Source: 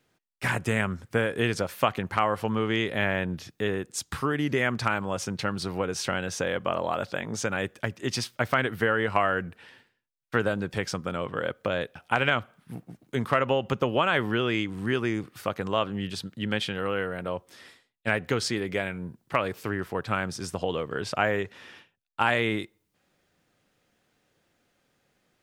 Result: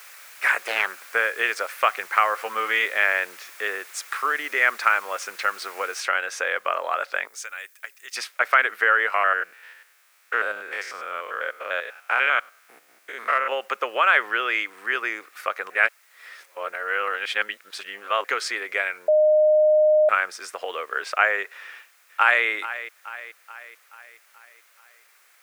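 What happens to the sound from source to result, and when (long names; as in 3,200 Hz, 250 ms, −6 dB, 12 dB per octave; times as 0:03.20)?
0:00.63–0:01.10: highs frequency-modulated by the lows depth 0.81 ms
0:02.35–0:02.86: double-tracking delay 13 ms −4.5 dB
0:06.00: noise floor change −47 dB −60 dB
0:07.27–0:08.16: first-order pre-emphasis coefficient 0.9
0:09.14–0:13.52: spectrum averaged block by block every 100 ms
0:15.70–0:18.24: reverse
0:19.08–0:20.09: beep over 613 Hz −13 dBFS
0:21.66–0:22.45: delay throw 430 ms, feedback 55%, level −13.5 dB
whole clip: high-pass filter 480 Hz 24 dB per octave; flat-topped bell 1,700 Hz +9 dB 1.3 octaves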